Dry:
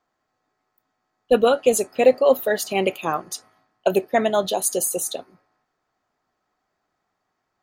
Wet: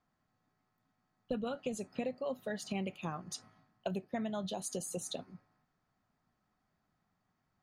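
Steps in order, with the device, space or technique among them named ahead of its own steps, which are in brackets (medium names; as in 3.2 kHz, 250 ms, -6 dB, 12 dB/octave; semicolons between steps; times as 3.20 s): jukebox (low-pass 7.3 kHz 12 dB/octave; resonant low shelf 270 Hz +10 dB, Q 1.5; compression 6:1, threshold -29 dBFS, peak gain reduction 17.5 dB); trim -6.5 dB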